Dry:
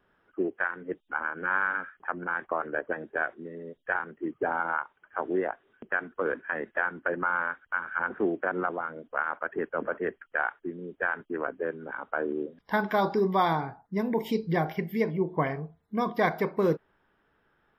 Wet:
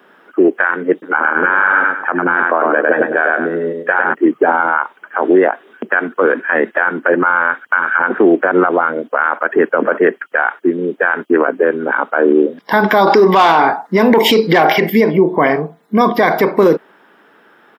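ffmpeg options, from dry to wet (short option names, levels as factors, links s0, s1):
-filter_complex "[0:a]asplit=3[s0][s1][s2];[s0]afade=t=out:st=1.02:d=0.02[s3];[s1]asplit=2[s4][s5];[s5]adelay=102,lowpass=f=3900:p=1,volume=0.562,asplit=2[s6][s7];[s7]adelay=102,lowpass=f=3900:p=1,volume=0.31,asplit=2[s8][s9];[s9]adelay=102,lowpass=f=3900:p=1,volume=0.31,asplit=2[s10][s11];[s11]adelay=102,lowpass=f=3900:p=1,volume=0.31[s12];[s4][s6][s8][s10][s12]amix=inputs=5:normalize=0,afade=t=in:st=1.02:d=0.02,afade=t=out:st=4.13:d=0.02[s13];[s2]afade=t=in:st=4.13:d=0.02[s14];[s3][s13][s14]amix=inputs=3:normalize=0,asettb=1/sr,asplit=3[s15][s16][s17];[s15]atrim=end=13.074[s18];[s16]atrim=start=13.07:end=14.9,asetpts=PTS-STARTPTS,afade=t=in:d=0.004:c=qsin,afade=t=out:st=1.826:d=0.004:c=qsin,asplit=2[s19][s20];[s20]highpass=f=720:p=1,volume=6.31,asoftclip=type=tanh:threshold=0.266[s21];[s19][s21]amix=inputs=2:normalize=0,lowpass=f=5100:p=1,volume=0.501[s22];[s17]atrim=start=14.896[s23];[s18][s22]acrossfade=d=0.004:c1=hsin:c2=qsin[s24];[s24][s23]acrossfade=d=0.004:c1=qsin:c2=hsin,highpass=f=210:w=0.5412,highpass=f=210:w=1.3066,alimiter=level_in=14.1:limit=0.891:release=50:level=0:latency=1,volume=0.891"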